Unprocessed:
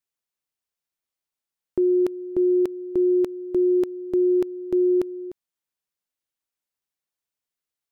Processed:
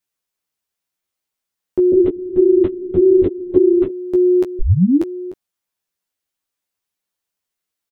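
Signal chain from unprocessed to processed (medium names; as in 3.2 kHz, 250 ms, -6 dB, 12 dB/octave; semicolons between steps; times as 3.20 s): 1.92–3.89 s: LPC vocoder at 8 kHz whisper; 4.59 s: tape start 0.45 s; early reflections 11 ms -3.5 dB, 21 ms -7 dB; trim +4 dB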